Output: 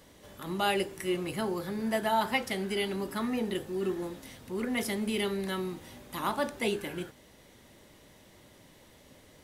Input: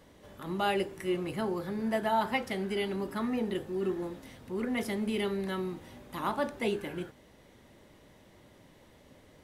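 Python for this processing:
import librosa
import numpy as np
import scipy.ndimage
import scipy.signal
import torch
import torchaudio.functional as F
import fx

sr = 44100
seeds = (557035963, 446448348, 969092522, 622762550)

y = fx.high_shelf(x, sr, hz=3100.0, db=8.5)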